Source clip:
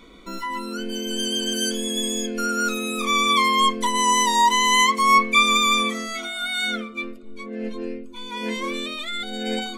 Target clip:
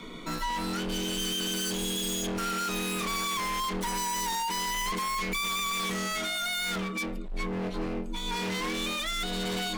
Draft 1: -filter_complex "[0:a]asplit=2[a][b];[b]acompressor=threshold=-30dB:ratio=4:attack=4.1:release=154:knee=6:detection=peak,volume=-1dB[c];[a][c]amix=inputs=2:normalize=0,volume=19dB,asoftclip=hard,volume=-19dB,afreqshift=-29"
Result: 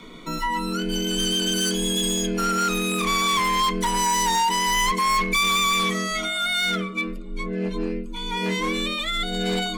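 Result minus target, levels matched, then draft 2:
overloaded stage: distortion -5 dB
-filter_complex "[0:a]asplit=2[a][b];[b]acompressor=threshold=-30dB:ratio=4:attack=4.1:release=154:knee=6:detection=peak,volume=-1dB[c];[a][c]amix=inputs=2:normalize=0,volume=30dB,asoftclip=hard,volume=-30dB,afreqshift=-29"

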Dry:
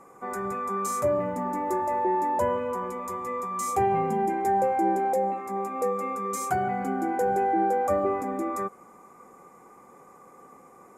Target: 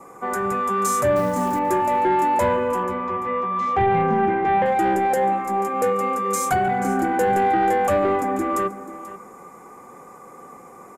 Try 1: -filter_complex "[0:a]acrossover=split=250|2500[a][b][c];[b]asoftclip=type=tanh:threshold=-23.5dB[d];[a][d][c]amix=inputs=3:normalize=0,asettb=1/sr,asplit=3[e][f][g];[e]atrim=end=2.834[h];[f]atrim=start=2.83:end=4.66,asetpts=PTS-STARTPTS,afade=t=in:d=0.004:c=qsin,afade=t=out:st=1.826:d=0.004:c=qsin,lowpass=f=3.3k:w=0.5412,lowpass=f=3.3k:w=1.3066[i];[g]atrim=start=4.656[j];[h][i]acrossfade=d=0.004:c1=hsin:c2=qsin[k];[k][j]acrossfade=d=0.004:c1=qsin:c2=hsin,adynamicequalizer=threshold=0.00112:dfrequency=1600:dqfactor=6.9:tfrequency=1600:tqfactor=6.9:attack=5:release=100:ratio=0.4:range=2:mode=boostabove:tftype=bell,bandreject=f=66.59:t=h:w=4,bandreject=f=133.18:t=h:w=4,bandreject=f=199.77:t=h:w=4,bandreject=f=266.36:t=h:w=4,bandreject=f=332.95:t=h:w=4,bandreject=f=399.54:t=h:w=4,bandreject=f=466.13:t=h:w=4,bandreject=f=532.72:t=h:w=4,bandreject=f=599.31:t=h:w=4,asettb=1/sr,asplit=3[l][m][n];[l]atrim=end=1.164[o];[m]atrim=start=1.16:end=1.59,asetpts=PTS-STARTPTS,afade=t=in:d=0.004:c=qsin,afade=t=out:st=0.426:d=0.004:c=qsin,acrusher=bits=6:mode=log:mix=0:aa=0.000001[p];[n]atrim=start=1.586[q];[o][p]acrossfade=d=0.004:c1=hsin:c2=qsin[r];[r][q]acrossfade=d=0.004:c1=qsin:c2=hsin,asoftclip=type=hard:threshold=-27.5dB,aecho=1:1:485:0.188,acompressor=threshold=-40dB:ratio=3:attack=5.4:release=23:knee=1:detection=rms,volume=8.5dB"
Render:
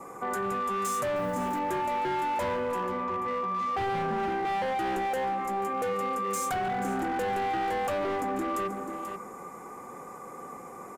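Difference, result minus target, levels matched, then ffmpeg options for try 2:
hard clip: distortion +38 dB; compressor: peak gain reduction +8.5 dB
-filter_complex "[0:a]acrossover=split=250|2500[a][b][c];[b]asoftclip=type=tanh:threshold=-23.5dB[d];[a][d][c]amix=inputs=3:normalize=0,asettb=1/sr,asplit=3[e][f][g];[e]atrim=end=2.834[h];[f]atrim=start=2.83:end=4.66,asetpts=PTS-STARTPTS,afade=t=in:d=0.004:c=qsin,afade=t=out:st=1.826:d=0.004:c=qsin,lowpass=f=3.3k:w=0.5412,lowpass=f=3.3k:w=1.3066[i];[g]atrim=start=4.656[j];[h][i]acrossfade=d=0.004:c1=hsin:c2=qsin[k];[k][j]acrossfade=d=0.004:c1=qsin:c2=hsin,adynamicequalizer=threshold=0.00112:dfrequency=1600:dqfactor=6.9:tfrequency=1600:tqfactor=6.9:attack=5:release=100:ratio=0.4:range=2:mode=boostabove:tftype=bell,bandreject=f=66.59:t=h:w=4,bandreject=f=133.18:t=h:w=4,bandreject=f=199.77:t=h:w=4,bandreject=f=266.36:t=h:w=4,bandreject=f=332.95:t=h:w=4,bandreject=f=399.54:t=h:w=4,bandreject=f=466.13:t=h:w=4,bandreject=f=532.72:t=h:w=4,bandreject=f=599.31:t=h:w=4,asettb=1/sr,asplit=3[l][m][n];[l]atrim=end=1.164[o];[m]atrim=start=1.16:end=1.59,asetpts=PTS-STARTPTS,afade=t=in:d=0.004:c=qsin,afade=t=out:st=0.426:d=0.004:c=qsin,acrusher=bits=6:mode=log:mix=0:aa=0.000001[p];[n]atrim=start=1.586[q];[o][p]acrossfade=d=0.004:c1=hsin:c2=qsin[r];[r][q]acrossfade=d=0.004:c1=qsin:c2=hsin,asoftclip=type=hard:threshold=-20.5dB,aecho=1:1:485:0.188,volume=8.5dB"

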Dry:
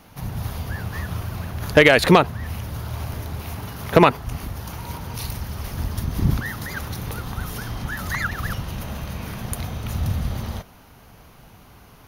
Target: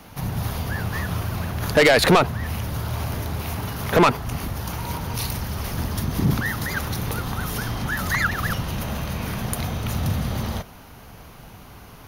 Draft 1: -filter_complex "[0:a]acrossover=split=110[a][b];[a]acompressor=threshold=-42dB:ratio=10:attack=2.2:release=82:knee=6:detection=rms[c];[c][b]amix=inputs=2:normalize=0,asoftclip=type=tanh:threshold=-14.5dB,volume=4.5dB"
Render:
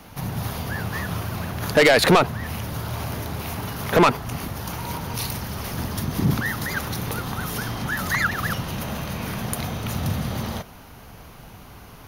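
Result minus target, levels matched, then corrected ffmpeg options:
compressor: peak gain reduction +9 dB
-filter_complex "[0:a]acrossover=split=110[a][b];[a]acompressor=threshold=-32dB:ratio=10:attack=2.2:release=82:knee=6:detection=rms[c];[c][b]amix=inputs=2:normalize=0,asoftclip=type=tanh:threshold=-14.5dB,volume=4.5dB"

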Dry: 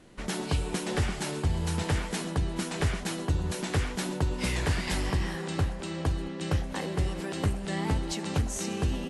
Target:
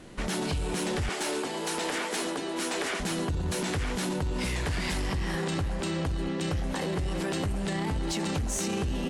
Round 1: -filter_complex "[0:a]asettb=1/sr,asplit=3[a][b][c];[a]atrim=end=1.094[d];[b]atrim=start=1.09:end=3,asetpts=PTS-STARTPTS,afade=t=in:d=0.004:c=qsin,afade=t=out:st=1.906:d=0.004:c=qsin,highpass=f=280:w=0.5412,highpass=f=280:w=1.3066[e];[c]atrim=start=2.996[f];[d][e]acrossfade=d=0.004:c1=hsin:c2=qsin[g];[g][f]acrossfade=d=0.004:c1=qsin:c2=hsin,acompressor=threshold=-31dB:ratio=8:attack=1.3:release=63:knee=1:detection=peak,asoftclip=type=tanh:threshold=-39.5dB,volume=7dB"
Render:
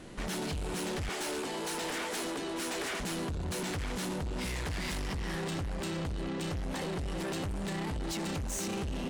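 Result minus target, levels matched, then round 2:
soft clip: distortion +12 dB
-filter_complex "[0:a]asettb=1/sr,asplit=3[a][b][c];[a]atrim=end=1.094[d];[b]atrim=start=1.09:end=3,asetpts=PTS-STARTPTS,afade=t=in:d=0.004:c=qsin,afade=t=out:st=1.906:d=0.004:c=qsin,highpass=f=280:w=0.5412,highpass=f=280:w=1.3066[e];[c]atrim=start=2.996[f];[d][e]acrossfade=d=0.004:c1=hsin:c2=qsin[g];[g][f]acrossfade=d=0.004:c1=qsin:c2=hsin,acompressor=threshold=-31dB:ratio=8:attack=1.3:release=63:knee=1:detection=peak,asoftclip=type=tanh:threshold=-29dB,volume=7dB"

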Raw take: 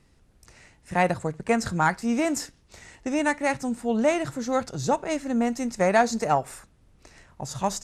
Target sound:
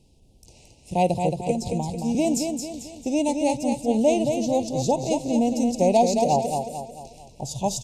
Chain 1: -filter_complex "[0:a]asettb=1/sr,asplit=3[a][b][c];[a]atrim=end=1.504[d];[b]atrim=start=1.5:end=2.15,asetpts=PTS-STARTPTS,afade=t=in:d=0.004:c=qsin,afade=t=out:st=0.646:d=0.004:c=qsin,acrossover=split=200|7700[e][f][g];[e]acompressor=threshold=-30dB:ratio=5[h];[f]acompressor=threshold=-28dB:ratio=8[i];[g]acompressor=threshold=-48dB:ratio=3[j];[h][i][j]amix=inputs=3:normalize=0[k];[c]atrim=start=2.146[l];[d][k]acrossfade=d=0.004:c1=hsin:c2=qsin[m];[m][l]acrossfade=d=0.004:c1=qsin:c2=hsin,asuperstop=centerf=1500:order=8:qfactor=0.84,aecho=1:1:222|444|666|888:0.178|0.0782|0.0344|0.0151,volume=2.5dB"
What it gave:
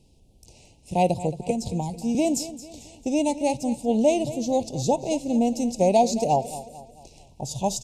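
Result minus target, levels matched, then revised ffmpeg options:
echo-to-direct -9.5 dB
-filter_complex "[0:a]asettb=1/sr,asplit=3[a][b][c];[a]atrim=end=1.504[d];[b]atrim=start=1.5:end=2.15,asetpts=PTS-STARTPTS,afade=t=in:d=0.004:c=qsin,afade=t=out:st=0.646:d=0.004:c=qsin,acrossover=split=200|7700[e][f][g];[e]acompressor=threshold=-30dB:ratio=5[h];[f]acompressor=threshold=-28dB:ratio=8[i];[g]acompressor=threshold=-48dB:ratio=3[j];[h][i][j]amix=inputs=3:normalize=0[k];[c]atrim=start=2.146[l];[d][k]acrossfade=d=0.004:c1=hsin:c2=qsin[m];[m][l]acrossfade=d=0.004:c1=qsin:c2=hsin,asuperstop=centerf=1500:order=8:qfactor=0.84,aecho=1:1:222|444|666|888|1110:0.531|0.234|0.103|0.0452|0.0199,volume=2.5dB"

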